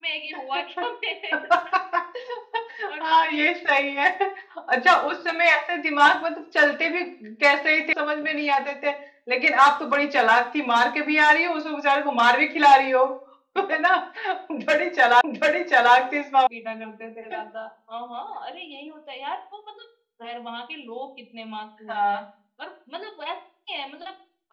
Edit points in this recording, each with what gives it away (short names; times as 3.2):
7.93 sound cut off
15.21 repeat of the last 0.74 s
16.47 sound cut off